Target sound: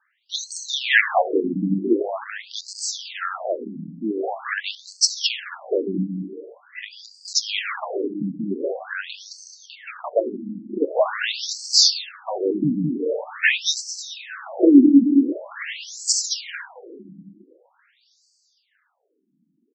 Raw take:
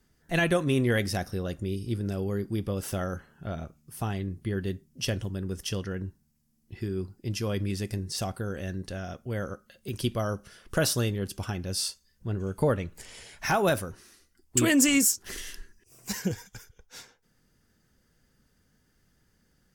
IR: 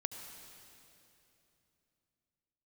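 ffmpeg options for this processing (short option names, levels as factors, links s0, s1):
-filter_complex "[0:a]acrossover=split=120|4300[s0][s1][s2];[s0]aeval=exprs='(mod(47.3*val(0)+1,2)-1)/47.3':c=same[s3];[s3][s1][s2]amix=inputs=3:normalize=0,agate=range=0.447:threshold=0.002:ratio=16:detection=peak,aecho=1:1:216|432|648|864:0.562|0.157|0.0441|0.0123,asettb=1/sr,asplit=3[s4][s5][s6];[s4]atrim=end=10.194[s7];[s5]atrim=start=10.19:end=10.82,asetpts=PTS-STARTPTS,afade=t=in:d=0.004:c=qsin,afade=t=out:st=0.626:d=0.004:c=qsin,acompressor=threshold=0.02:ratio=3[s8];[s6]atrim=start=10.816[s9];[s7][s8]acrossfade=d=0.004:c1=hsin:c2=qsin[s10];[s10][s9]acrossfade=d=0.004:c1=qsin:c2=hsin,lowshelf=f=300:g=-8.5,asplit=2[s11][s12];[1:a]atrim=start_sample=2205[s13];[s12][s13]afir=irnorm=-1:irlink=0,volume=1.06[s14];[s11][s14]amix=inputs=2:normalize=0,alimiter=level_in=2.37:limit=0.891:release=50:level=0:latency=1,afftfilt=real='re*between(b*sr/1024,220*pow(6000/220,0.5+0.5*sin(2*PI*0.45*pts/sr))/1.41,220*pow(6000/220,0.5+0.5*sin(2*PI*0.45*pts/sr))*1.41)':imag='im*between(b*sr/1024,220*pow(6000/220,0.5+0.5*sin(2*PI*0.45*pts/sr))/1.41,220*pow(6000/220,0.5+0.5*sin(2*PI*0.45*pts/sr))*1.41)':win_size=1024:overlap=0.75,volume=1.78"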